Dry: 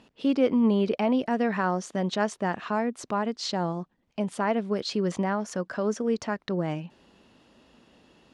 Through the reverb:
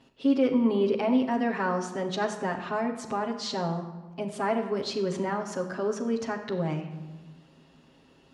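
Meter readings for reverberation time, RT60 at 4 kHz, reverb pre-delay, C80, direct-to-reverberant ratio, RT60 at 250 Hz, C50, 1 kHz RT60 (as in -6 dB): 1.2 s, 0.80 s, 7 ms, 10.0 dB, -6.0 dB, 1.6 s, 8.0 dB, 1.2 s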